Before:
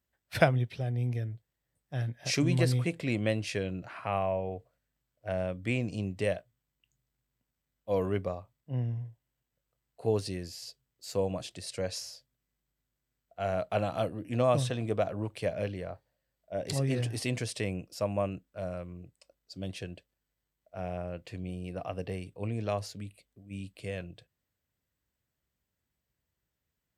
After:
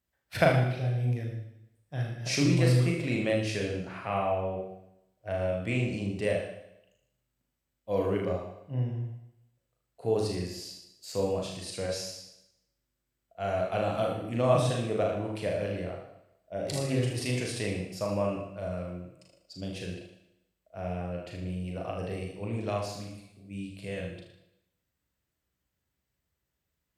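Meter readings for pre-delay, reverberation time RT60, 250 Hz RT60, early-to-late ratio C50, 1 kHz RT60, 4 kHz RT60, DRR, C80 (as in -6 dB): 37 ms, 0.80 s, 0.90 s, 3.0 dB, 0.80 s, 0.80 s, -1.0 dB, 6.5 dB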